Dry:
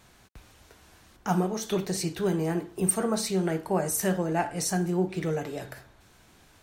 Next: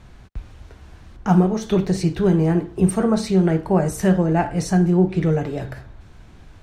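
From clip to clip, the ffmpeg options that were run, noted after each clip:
ffmpeg -i in.wav -af "aemphasis=mode=reproduction:type=bsi,volume=5.5dB" out.wav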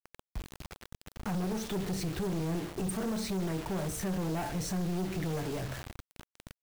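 ffmpeg -i in.wav -af "alimiter=limit=-16dB:level=0:latency=1:release=62,acrusher=bits=5:mix=0:aa=0.000001,aeval=exprs='(tanh(15.8*val(0)+0.25)-tanh(0.25))/15.8':channel_layout=same,volume=-5dB" out.wav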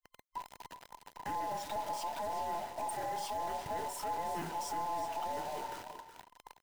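ffmpeg -i in.wav -af "afftfilt=real='real(if(between(b,1,1008),(2*floor((b-1)/48)+1)*48-b,b),0)':imag='imag(if(between(b,1,1008),(2*floor((b-1)/48)+1)*48-b,b),0)*if(between(b,1,1008),-1,1)':win_size=2048:overlap=0.75,aecho=1:1:370:0.266,volume=-5dB" out.wav

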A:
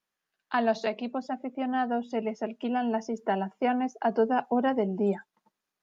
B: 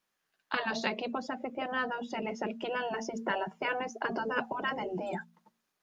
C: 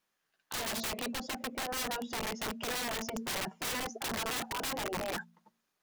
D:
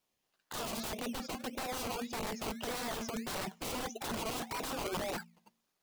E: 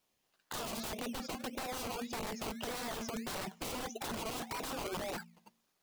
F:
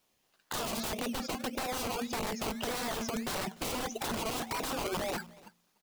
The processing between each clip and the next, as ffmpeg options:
ffmpeg -i in.wav -af "bandreject=frequency=57.37:width_type=h:width=4,bandreject=frequency=114.74:width_type=h:width=4,bandreject=frequency=172.11:width_type=h:width=4,bandreject=frequency=229.48:width_type=h:width=4,afftfilt=real='re*lt(hypot(re,im),0.178)':imag='im*lt(hypot(re,im),0.178)':win_size=1024:overlap=0.75,volume=4dB" out.wav
ffmpeg -i in.wav -af "aeval=exprs='(mod(31.6*val(0)+1,2)-1)/31.6':channel_layout=same" out.wav
ffmpeg -i in.wav -filter_complex "[0:a]acrossover=split=1900[link_01][link_02];[link_01]acrusher=samples=19:mix=1:aa=0.000001:lfo=1:lforange=11.4:lforate=1.7[link_03];[link_02]alimiter=level_in=7dB:limit=-24dB:level=0:latency=1,volume=-7dB[link_04];[link_03][link_04]amix=inputs=2:normalize=0" out.wav
ffmpeg -i in.wav -af "acompressor=threshold=-41dB:ratio=3,volume=3dB" out.wav
ffmpeg -i in.wav -af "aecho=1:1:295:0.075,volume=5dB" out.wav

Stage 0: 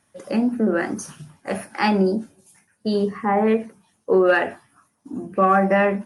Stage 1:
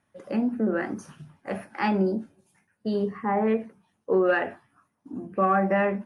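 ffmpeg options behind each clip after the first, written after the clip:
ffmpeg -i in.wav -af "bass=frequency=250:gain=1,treble=frequency=4000:gain=-11,volume=-5.5dB" out.wav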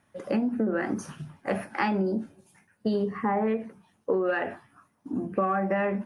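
ffmpeg -i in.wav -af "acompressor=threshold=-28dB:ratio=10,volume=5.5dB" out.wav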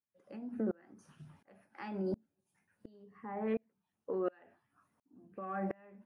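ffmpeg -i in.wav -af "aeval=exprs='val(0)*pow(10,-34*if(lt(mod(-1.4*n/s,1),2*abs(-1.4)/1000),1-mod(-1.4*n/s,1)/(2*abs(-1.4)/1000),(mod(-1.4*n/s,1)-2*abs(-1.4)/1000)/(1-2*abs(-1.4)/1000))/20)':channel_layout=same,volume=-4.5dB" out.wav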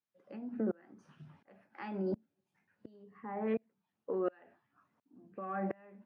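ffmpeg -i in.wav -af "highpass=110,lowpass=4200,volume=1dB" out.wav

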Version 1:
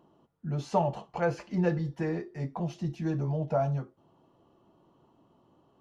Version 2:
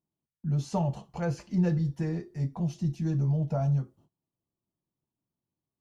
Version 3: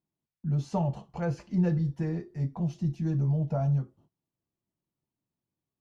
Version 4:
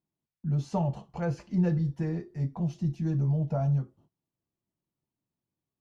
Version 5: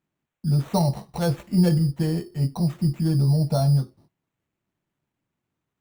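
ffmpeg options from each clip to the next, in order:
ffmpeg -i in.wav -af "bass=frequency=250:gain=13,treble=frequency=4000:gain=12,agate=range=-26dB:threshold=-50dB:ratio=16:detection=peak,volume=-6.5dB" out.wav
ffmpeg -i in.wav -af "highshelf=frequency=4600:gain=-9" out.wav
ffmpeg -i in.wav -af anull out.wav
ffmpeg -i in.wav -af "acrusher=samples=9:mix=1:aa=0.000001,volume=7dB" out.wav

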